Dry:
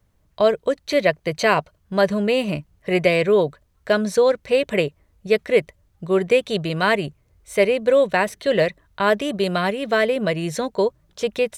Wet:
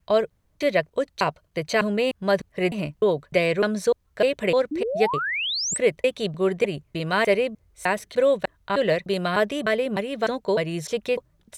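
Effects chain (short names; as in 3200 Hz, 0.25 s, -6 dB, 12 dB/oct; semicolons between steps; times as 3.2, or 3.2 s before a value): slices in reverse order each 0.302 s, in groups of 2; painted sound rise, 4.71–5.78, 280–8600 Hz -23 dBFS; gain -3.5 dB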